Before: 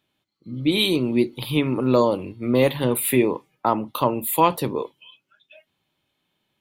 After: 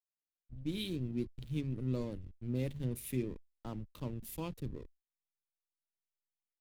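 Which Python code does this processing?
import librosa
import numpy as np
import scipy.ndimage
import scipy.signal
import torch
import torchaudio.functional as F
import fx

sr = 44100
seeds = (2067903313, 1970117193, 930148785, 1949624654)

y = fx.backlash(x, sr, play_db=-23.0)
y = fx.tone_stack(y, sr, knobs='10-0-1')
y = y * 10.0 ** (2.5 / 20.0)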